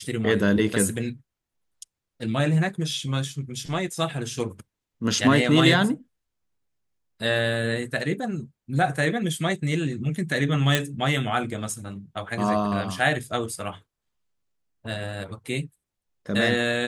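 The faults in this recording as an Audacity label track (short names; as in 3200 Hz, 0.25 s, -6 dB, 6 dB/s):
10.750000	10.750000	pop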